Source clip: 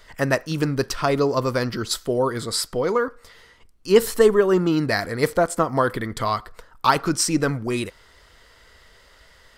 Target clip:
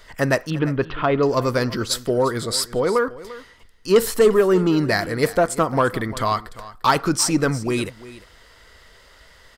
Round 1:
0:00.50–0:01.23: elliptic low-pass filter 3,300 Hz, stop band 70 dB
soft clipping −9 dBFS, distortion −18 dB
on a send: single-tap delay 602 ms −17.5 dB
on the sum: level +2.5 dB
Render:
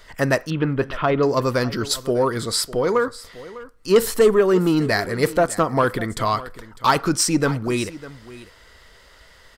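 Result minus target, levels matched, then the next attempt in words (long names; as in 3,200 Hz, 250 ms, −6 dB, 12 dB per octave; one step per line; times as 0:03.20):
echo 255 ms late
0:00.50–0:01.23: elliptic low-pass filter 3,300 Hz, stop band 70 dB
soft clipping −9 dBFS, distortion −18 dB
on a send: single-tap delay 347 ms −17.5 dB
on the sum: level +2.5 dB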